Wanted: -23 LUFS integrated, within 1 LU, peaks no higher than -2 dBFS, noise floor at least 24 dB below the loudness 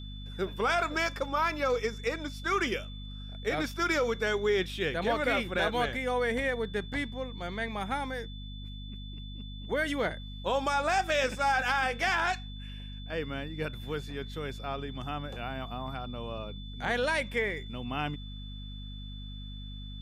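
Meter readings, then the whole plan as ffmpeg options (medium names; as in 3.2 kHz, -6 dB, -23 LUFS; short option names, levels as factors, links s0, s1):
hum 50 Hz; highest harmonic 250 Hz; hum level -39 dBFS; steady tone 3.5 kHz; tone level -48 dBFS; loudness -31.0 LUFS; peak level -16.5 dBFS; loudness target -23.0 LUFS
-> -af "bandreject=f=50:t=h:w=6,bandreject=f=100:t=h:w=6,bandreject=f=150:t=h:w=6,bandreject=f=200:t=h:w=6,bandreject=f=250:t=h:w=6"
-af "bandreject=f=3500:w=30"
-af "volume=2.51"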